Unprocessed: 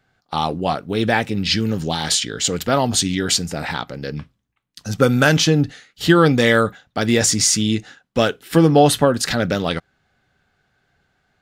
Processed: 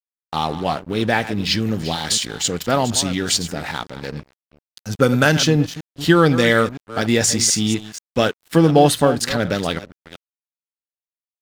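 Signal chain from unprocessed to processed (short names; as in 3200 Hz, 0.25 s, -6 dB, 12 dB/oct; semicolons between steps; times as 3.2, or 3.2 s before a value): reverse delay 0.242 s, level -12.5 dB; crossover distortion -36 dBFS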